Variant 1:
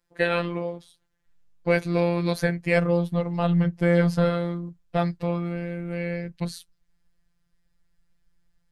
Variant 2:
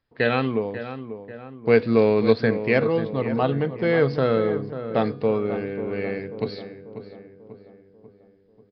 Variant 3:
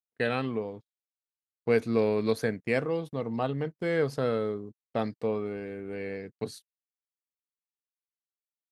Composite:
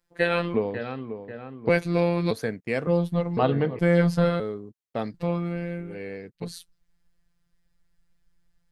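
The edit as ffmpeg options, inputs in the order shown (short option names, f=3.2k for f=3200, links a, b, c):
-filter_complex "[1:a]asplit=2[a][b];[2:a]asplit=3[c][d][e];[0:a]asplit=6[f][g][h][i][j][k];[f]atrim=end=0.542[l];[a]atrim=start=0.538:end=1.692[m];[g]atrim=start=1.688:end=2.312[n];[c]atrim=start=2.308:end=2.872[o];[h]atrim=start=2.868:end=3.372[p];[b]atrim=start=3.368:end=3.792[q];[i]atrim=start=3.788:end=4.402[r];[d]atrim=start=4.398:end=5.142[s];[j]atrim=start=5.138:end=6[t];[e]atrim=start=5.76:end=6.58[u];[k]atrim=start=6.34[v];[l][m]acrossfade=d=0.004:c1=hsin:c2=hsin[w];[w][n]acrossfade=d=0.004:c1=hsin:c2=hsin[x];[x][o]acrossfade=d=0.004:c1=hsin:c2=hsin[y];[y][p]acrossfade=d=0.004:c1=hsin:c2=hsin[z];[z][q]acrossfade=d=0.004:c1=hsin:c2=hsin[aa];[aa][r]acrossfade=d=0.004:c1=hsin:c2=hsin[ab];[ab][s]acrossfade=d=0.004:c1=hsin:c2=hsin[ac];[ac][t]acrossfade=d=0.004:c1=hsin:c2=hsin[ad];[ad][u]acrossfade=d=0.24:c1=tri:c2=tri[ae];[ae][v]acrossfade=d=0.24:c1=tri:c2=tri"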